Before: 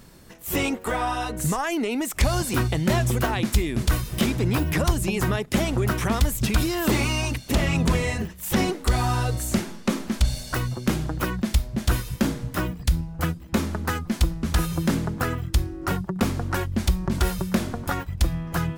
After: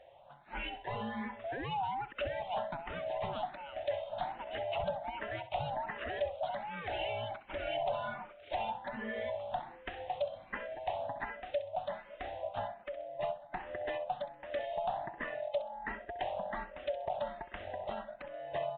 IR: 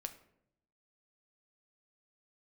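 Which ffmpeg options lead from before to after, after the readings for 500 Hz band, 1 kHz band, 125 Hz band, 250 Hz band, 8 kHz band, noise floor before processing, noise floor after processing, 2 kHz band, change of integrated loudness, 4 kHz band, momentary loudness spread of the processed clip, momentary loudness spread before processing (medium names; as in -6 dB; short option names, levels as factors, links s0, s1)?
-6.5 dB, -6.5 dB, -27.0 dB, -24.5 dB, under -40 dB, -42 dBFS, -56 dBFS, -12.5 dB, -14.0 dB, -15.5 dB, 6 LU, 5 LU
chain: -filter_complex "[0:a]afftfilt=real='real(if(lt(b,1008),b+24*(1-2*mod(floor(b/24),2)),b),0)':imag='imag(if(lt(b,1008),b+24*(1-2*mod(floor(b/24),2)),b),0)':win_size=2048:overlap=0.75,acompressor=threshold=0.0708:ratio=3,asoftclip=type=hard:threshold=0.119,acrusher=bits=6:mode=log:mix=0:aa=0.000001,asplit=2[s0][s1];[s1]aecho=0:1:65|130|195:0.224|0.0694|0.0215[s2];[s0][s2]amix=inputs=2:normalize=0,aresample=8000,aresample=44100,asplit=2[s3][s4];[s4]afreqshift=1.3[s5];[s3][s5]amix=inputs=2:normalize=1,volume=0.398"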